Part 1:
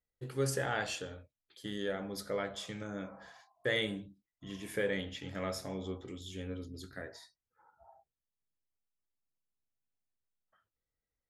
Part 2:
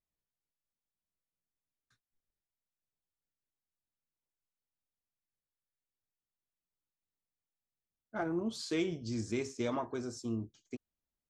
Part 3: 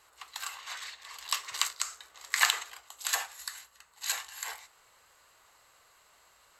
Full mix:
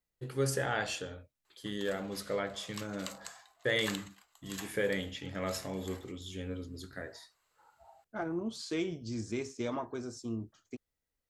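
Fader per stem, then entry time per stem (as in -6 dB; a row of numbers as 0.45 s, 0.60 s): +1.5 dB, -1.0 dB, -14.5 dB; 0.00 s, 0.00 s, 1.45 s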